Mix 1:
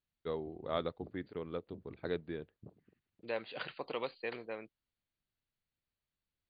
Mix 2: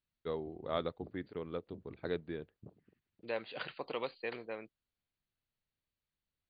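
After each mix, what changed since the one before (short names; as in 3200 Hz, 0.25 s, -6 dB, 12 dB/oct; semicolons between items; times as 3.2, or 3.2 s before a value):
none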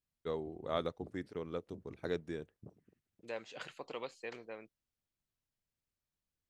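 second voice -4.5 dB; master: remove brick-wall FIR low-pass 4800 Hz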